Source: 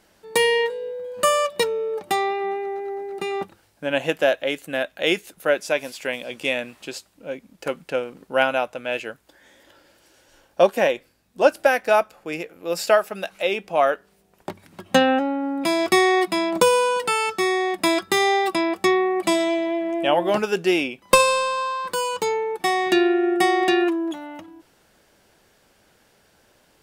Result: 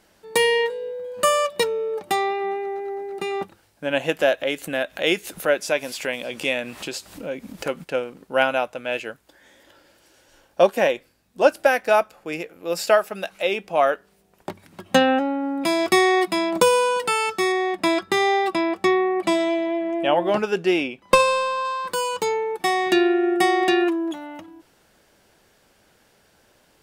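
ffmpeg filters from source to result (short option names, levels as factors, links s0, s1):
-filter_complex "[0:a]asplit=3[s0][s1][s2];[s0]afade=t=out:st=4.11:d=0.02[s3];[s1]acompressor=mode=upward:threshold=0.0708:ratio=2.5:attack=3.2:release=140:knee=2.83:detection=peak,afade=t=in:st=4.11:d=0.02,afade=t=out:st=7.83:d=0.02[s4];[s2]afade=t=in:st=7.83:d=0.02[s5];[s3][s4][s5]amix=inputs=3:normalize=0,asettb=1/sr,asplit=3[s6][s7][s8];[s6]atrim=end=17.524[s9];[s7]atrim=start=17.52:end=21.65,asetpts=PTS-STARTPTS,afade=t=in:d=0.004:c=qsin,afade=t=out:st=4.126:d=0.004:c=qsin,lowpass=f=3900:p=1[s10];[s8]atrim=start=21.646[s11];[s9][s10]acrossfade=d=0.004:c1=hsin:c2=qsin[s12];[s12][s11]acrossfade=d=0.004:c1=qsin:c2=hsin"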